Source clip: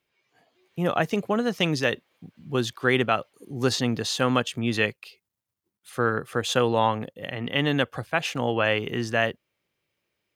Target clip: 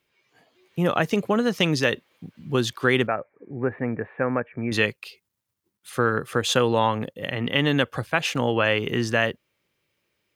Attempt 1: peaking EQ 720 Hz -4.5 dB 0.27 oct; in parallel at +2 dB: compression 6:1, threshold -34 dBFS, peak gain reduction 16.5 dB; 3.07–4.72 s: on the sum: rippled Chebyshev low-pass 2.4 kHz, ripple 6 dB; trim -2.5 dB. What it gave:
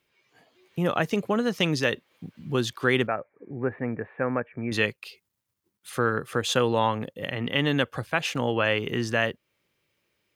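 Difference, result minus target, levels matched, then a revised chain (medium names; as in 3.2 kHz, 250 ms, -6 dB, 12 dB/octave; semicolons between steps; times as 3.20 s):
compression: peak gain reduction +9 dB
peaking EQ 720 Hz -4.5 dB 0.27 oct; in parallel at +2 dB: compression 6:1, threshold -23.5 dBFS, peak gain reduction 8 dB; 3.07–4.72 s: on the sum: rippled Chebyshev low-pass 2.4 kHz, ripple 6 dB; trim -2.5 dB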